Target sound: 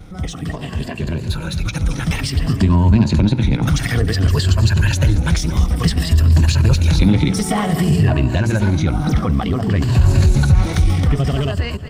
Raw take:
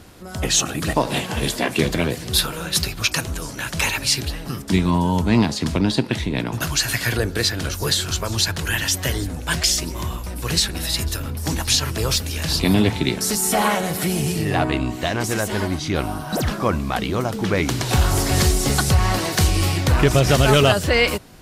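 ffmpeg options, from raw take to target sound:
ffmpeg -i in.wav -af "afftfilt=real='re*pow(10,8/40*sin(2*PI*(1.4*log(max(b,1)*sr/1024/100)/log(2)-(-0.31)*(pts-256)/sr)))':imag='im*pow(10,8/40*sin(2*PI*(1.4*log(max(b,1)*sr/1024/100)/log(2)-(-0.31)*(pts-256)/sr)))':win_size=1024:overlap=0.75,aecho=1:1:403|806|1209:0.112|0.0449|0.018,asoftclip=type=tanh:threshold=-7.5dB,equalizer=frequency=12000:width=4.5:gain=-13.5,acompressor=threshold=-30dB:ratio=2.5,bass=frequency=250:gain=12,treble=frequency=4000:gain=-5,bandreject=frequency=60:width_type=h:width=6,bandreject=frequency=120:width_type=h:width=6,bandreject=frequency=180:width_type=h:width=6,bandreject=frequency=240:width_type=h:width=6,bandreject=frequency=300:width_type=h:width=6,bandreject=frequency=360:width_type=h:width=6,bandreject=frequency=420:width_type=h:width=6,bandreject=frequency=480:width_type=h:width=6,dynaudnorm=framelen=710:gausssize=9:maxgain=12.5dB,atempo=1.8" out.wav

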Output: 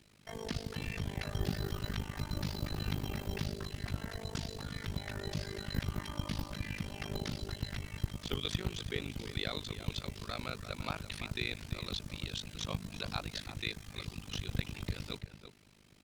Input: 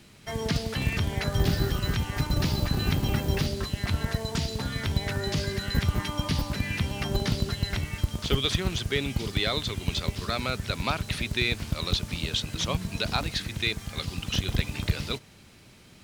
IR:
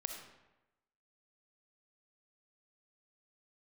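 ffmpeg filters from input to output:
-filter_complex "[0:a]asplit=2[link_01][link_02];[link_02]adelay=338.2,volume=-10dB,highshelf=frequency=4000:gain=-7.61[link_03];[link_01][link_03]amix=inputs=2:normalize=0,tremolo=f=51:d=0.974,volume=-7dB"

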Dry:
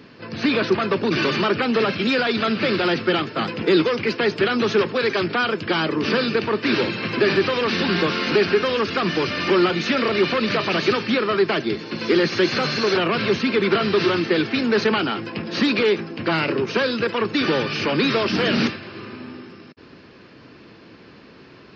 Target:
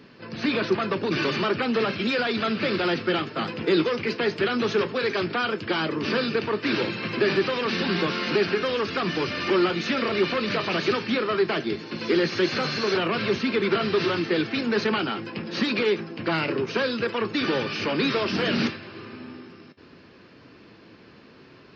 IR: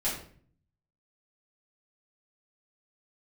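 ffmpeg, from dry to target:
-af "flanger=delay=5.2:depth=7.2:regen=-72:speed=0.13:shape=sinusoidal"

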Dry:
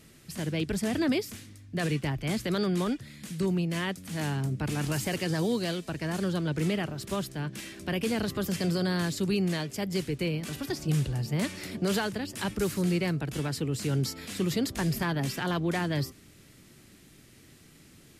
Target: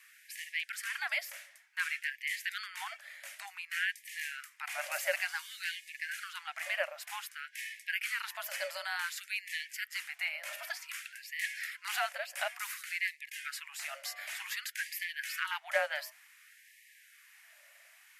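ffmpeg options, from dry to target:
ffmpeg -i in.wav -af "afreqshift=-150,equalizer=frequency=125:width_type=o:width=1:gain=-6,equalizer=frequency=250:width_type=o:width=1:gain=11,equalizer=frequency=500:width_type=o:width=1:gain=8,equalizer=frequency=1000:width_type=o:width=1:gain=-10,equalizer=frequency=2000:width_type=o:width=1:gain=8,equalizer=frequency=4000:width_type=o:width=1:gain=-8,equalizer=frequency=8000:width_type=o:width=1:gain=-5,afftfilt=real='re*gte(b*sr/1024,520*pow(1700/520,0.5+0.5*sin(2*PI*0.55*pts/sr)))':imag='im*gte(b*sr/1024,520*pow(1700/520,0.5+0.5*sin(2*PI*0.55*pts/sr)))':win_size=1024:overlap=0.75,volume=1.5dB" out.wav

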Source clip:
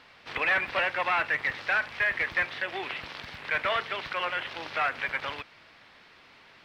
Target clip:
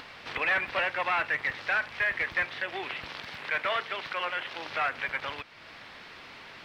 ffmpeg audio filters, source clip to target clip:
ffmpeg -i in.wav -filter_complex "[0:a]asettb=1/sr,asplit=3[link_01][link_02][link_03];[link_01]atrim=end=3.214[link_04];[link_02]atrim=start=3.21:end=4.68,asetpts=PTS-STARTPTS,afade=type=in:duration=0.004:curve=qsin,afade=type=out:start_time=1.466:duration=0.004:curve=qsin,highpass=frequency=180:poles=1[link_05];[link_03]atrim=start=4.676[link_06];[link_04][link_05]acrossfade=duration=0.004:curve1=hsin:curve2=qsin[link_07];[link_07][link_06]acrossfade=duration=0.004:curve1=qsin:curve2=hsin,asplit=2[link_08][link_09];[link_09]acompressor=mode=upward:threshold=-30dB:ratio=2.5,volume=3dB[link_10];[link_08][link_10]amix=inputs=2:normalize=0,volume=-9dB" out.wav

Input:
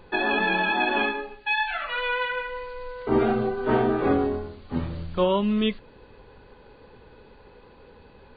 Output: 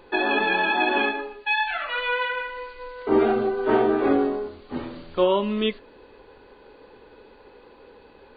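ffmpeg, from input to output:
ffmpeg -i in.wav -af "lowshelf=frequency=220:width_type=q:width=1.5:gain=-8,bandreject=frequency=82.72:width_type=h:width=4,bandreject=frequency=165.44:width_type=h:width=4,bandreject=frequency=248.16:width_type=h:width=4,bandreject=frequency=330.88:width_type=h:width=4,bandreject=frequency=413.6:width_type=h:width=4,bandreject=frequency=496.32:width_type=h:width=4,bandreject=frequency=579.04:width_type=h:width=4,bandreject=frequency=661.76:width_type=h:width=4,bandreject=frequency=744.48:width_type=h:width=4,bandreject=frequency=827.2:width_type=h:width=4,bandreject=frequency=909.92:width_type=h:width=4,bandreject=frequency=992.64:width_type=h:width=4,bandreject=frequency=1075.36:width_type=h:width=4,bandreject=frequency=1158.08:width_type=h:width=4,bandreject=frequency=1240.8:width_type=h:width=4,bandreject=frequency=1323.52:width_type=h:width=4,bandreject=frequency=1406.24:width_type=h:width=4,bandreject=frequency=1488.96:width_type=h:width=4,bandreject=frequency=1571.68:width_type=h:width=4,bandreject=frequency=1654.4:width_type=h:width=4,bandreject=frequency=1737.12:width_type=h:width=4,volume=1.5dB" out.wav

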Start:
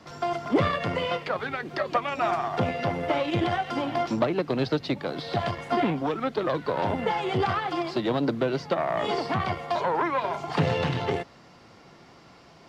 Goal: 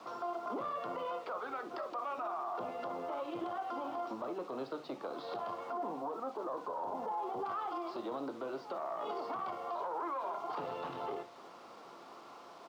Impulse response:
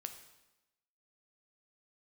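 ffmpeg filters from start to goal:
-filter_complex "[0:a]bandreject=frequency=50:width_type=h:width=6,bandreject=frequency=100:width_type=h:width=6,bandreject=frequency=150:width_type=h:width=6,bandreject=frequency=200:width_type=h:width=6,acompressor=threshold=-37dB:ratio=3,asetnsamples=nb_out_samples=441:pad=0,asendcmd='5.73 highshelf g -13.5;7.45 highshelf g -6',highshelf=frequency=1500:width_type=q:width=3:gain=-7,aecho=1:1:292:0.0794[link_01];[1:a]atrim=start_sample=2205,atrim=end_sample=3528[link_02];[link_01][link_02]afir=irnorm=-1:irlink=0,acrusher=bits=9:mix=0:aa=0.000001,acrossover=split=270 5700:gain=0.0891 1 0.158[link_03][link_04][link_05];[link_03][link_04][link_05]amix=inputs=3:normalize=0,alimiter=level_in=10dB:limit=-24dB:level=0:latency=1:release=13,volume=-10dB,volume=3dB"

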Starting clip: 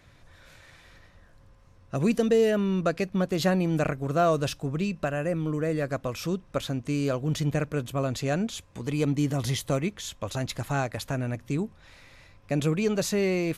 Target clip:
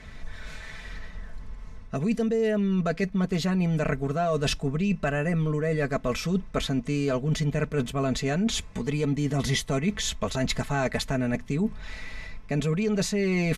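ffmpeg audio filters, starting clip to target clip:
ffmpeg -i in.wav -filter_complex "[0:a]lowpass=9100,aecho=1:1:4.6:0.76,asplit=2[link_01][link_02];[link_02]alimiter=limit=-18.5dB:level=0:latency=1:release=30,volume=2dB[link_03];[link_01][link_03]amix=inputs=2:normalize=0,lowshelf=frequency=110:gain=10,areverse,acompressor=threshold=-23dB:ratio=6,areverse,equalizer=frequency=2000:width=5:gain=5.5" out.wav

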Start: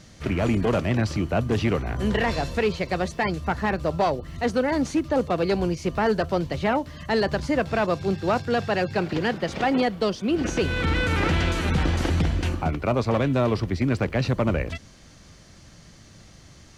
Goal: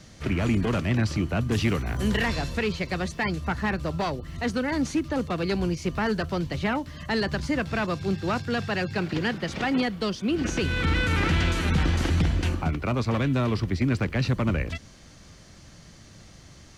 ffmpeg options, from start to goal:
ffmpeg -i in.wav -filter_complex "[0:a]asettb=1/sr,asplit=3[link_01][link_02][link_03];[link_01]atrim=end=1.514[link_04];[link_02]atrim=start=1.51:end=2.28,asetpts=PTS-STARTPTS,afade=type=in:duration=0.004:curve=qsin,afade=type=out:start_time=0.766:duration=0.004:curve=qsin,highshelf=frequency=6300:gain=10[link_05];[link_03]atrim=start=2.276[link_06];[link_04][link_05]acrossfade=duration=0.004:curve1=hsin:curve2=qsin[link_07];[link_07][link_06]acrossfade=duration=0.004:curve1=qsin:curve2=hsin,acrossover=split=370|970|2800[link_08][link_09][link_10][link_11];[link_09]acompressor=threshold=-39dB:ratio=6[link_12];[link_08][link_12][link_10][link_11]amix=inputs=4:normalize=0" out.wav

